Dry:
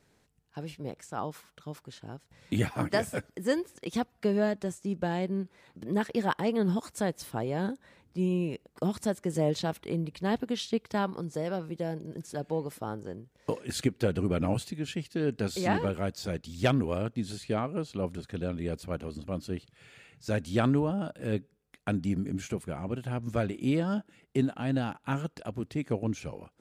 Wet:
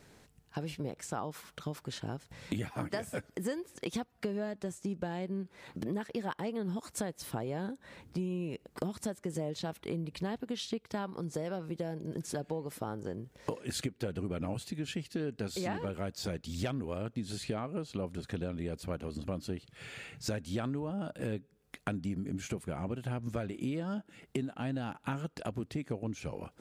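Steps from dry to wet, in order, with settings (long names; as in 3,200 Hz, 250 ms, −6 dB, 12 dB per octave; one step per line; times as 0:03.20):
downward compressor 6 to 1, threshold −42 dBFS, peak gain reduction 20 dB
level +8 dB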